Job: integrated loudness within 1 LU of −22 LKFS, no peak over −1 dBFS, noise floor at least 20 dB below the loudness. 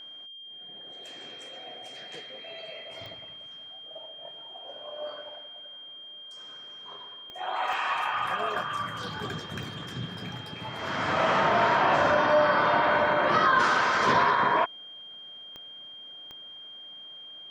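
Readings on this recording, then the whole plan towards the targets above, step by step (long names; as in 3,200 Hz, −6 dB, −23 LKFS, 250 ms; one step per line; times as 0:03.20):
number of clicks 6; interfering tone 3,200 Hz; level of the tone −42 dBFS; integrated loudness −25.5 LKFS; sample peak −10.0 dBFS; target loudness −22.0 LKFS
→ click removal
notch filter 3,200 Hz, Q 30
level +3.5 dB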